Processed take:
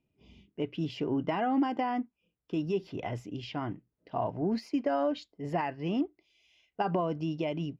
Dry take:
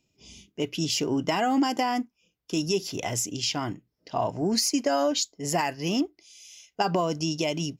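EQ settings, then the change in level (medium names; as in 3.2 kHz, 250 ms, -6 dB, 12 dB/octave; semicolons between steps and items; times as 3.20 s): distance through air 470 m; -3.0 dB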